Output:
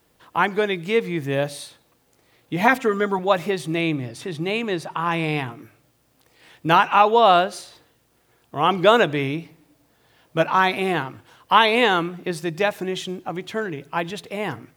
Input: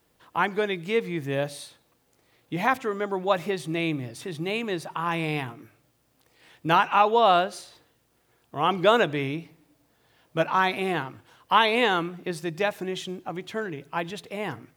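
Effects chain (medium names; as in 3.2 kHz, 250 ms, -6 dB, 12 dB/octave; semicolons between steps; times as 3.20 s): 2.61–3.19 s: comb 4.3 ms, depth 87%; 3.81–5.52 s: treble shelf 11 kHz -8.5 dB; trim +4.5 dB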